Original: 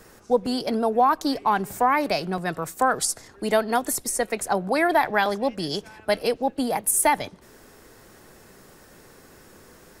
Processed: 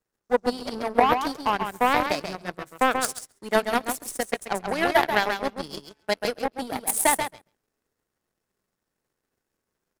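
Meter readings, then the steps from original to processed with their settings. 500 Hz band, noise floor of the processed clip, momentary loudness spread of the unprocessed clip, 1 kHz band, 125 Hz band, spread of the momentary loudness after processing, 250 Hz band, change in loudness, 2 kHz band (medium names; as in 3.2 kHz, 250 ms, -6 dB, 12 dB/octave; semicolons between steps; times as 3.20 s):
-2.0 dB, -83 dBFS, 8 LU, -1.5 dB, -5.0 dB, 11 LU, -3.5 dB, -1.5 dB, +0.5 dB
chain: feedback delay 135 ms, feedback 20%, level -3.5 dB; power-law waveshaper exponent 2; trim +5 dB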